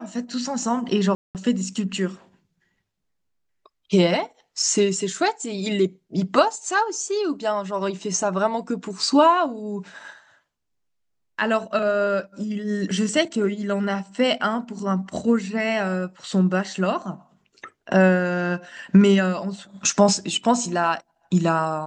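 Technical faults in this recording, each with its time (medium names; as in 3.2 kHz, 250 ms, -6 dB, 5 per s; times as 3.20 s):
1.15–1.35 s: dropout 198 ms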